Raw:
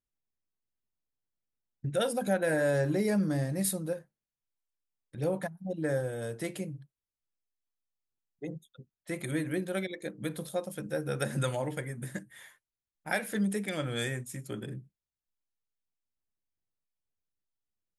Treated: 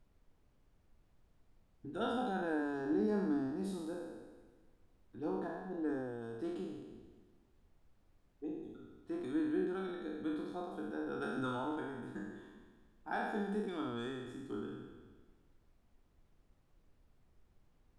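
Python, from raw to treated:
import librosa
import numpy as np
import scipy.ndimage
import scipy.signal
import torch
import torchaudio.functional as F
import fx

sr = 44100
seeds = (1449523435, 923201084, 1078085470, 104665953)

y = fx.spec_trails(x, sr, decay_s=1.38)
y = scipy.signal.sosfilt(scipy.signal.butter(2, 2300.0, 'lowpass', fs=sr, output='sos'), y)
y = fx.peak_eq(y, sr, hz=220.0, db=3.0, octaves=0.77)
y = fx.fixed_phaser(y, sr, hz=560.0, stages=6)
y = fx.dmg_noise_colour(y, sr, seeds[0], colour='brown', level_db=-62.0)
y = fx.hum_notches(y, sr, base_hz=50, count=4)
y = F.gain(torch.from_numpy(y), -4.0).numpy()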